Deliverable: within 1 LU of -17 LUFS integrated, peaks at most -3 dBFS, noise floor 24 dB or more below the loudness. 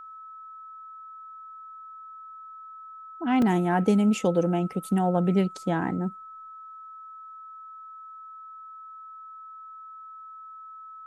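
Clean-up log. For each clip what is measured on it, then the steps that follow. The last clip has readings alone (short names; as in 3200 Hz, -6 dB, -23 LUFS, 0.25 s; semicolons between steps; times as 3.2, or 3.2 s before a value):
dropouts 1; longest dropout 2.4 ms; steady tone 1300 Hz; tone level -41 dBFS; loudness -25.0 LUFS; peak -10.5 dBFS; loudness target -17.0 LUFS
-> interpolate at 3.42, 2.4 ms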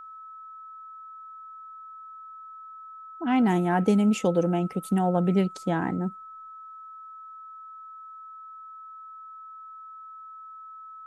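dropouts 0; steady tone 1300 Hz; tone level -41 dBFS
-> notch 1300 Hz, Q 30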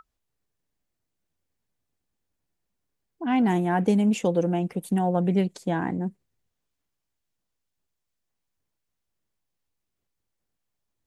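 steady tone none; loudness -25.0 LUFS; peak -10.0 dBFS; loudness target -17.0 LUFS
-> gain +8 dB; limiter -3 dBFS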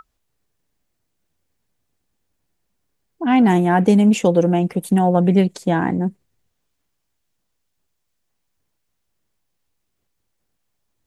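loudness -17.0 LUFS; peak -3.0 dBFS; noise floor -74 dBFS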